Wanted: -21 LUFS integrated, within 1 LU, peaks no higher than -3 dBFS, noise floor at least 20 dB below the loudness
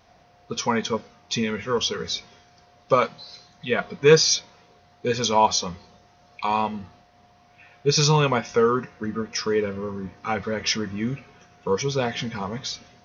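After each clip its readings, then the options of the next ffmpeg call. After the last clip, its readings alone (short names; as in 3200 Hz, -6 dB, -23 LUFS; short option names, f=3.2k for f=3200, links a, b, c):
loudness -23.5 LUFS; peak -2.5 dBFS; loudness target -21.0 LUFS
-> -af "volume=2.5dB,alimiter=limit=-3dB:level=0:latency=1"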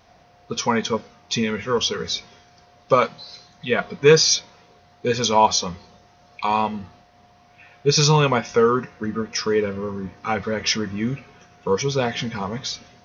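loudness -21.5 LUFS; peak -3.0 dBFS; noise floor -54 dBFS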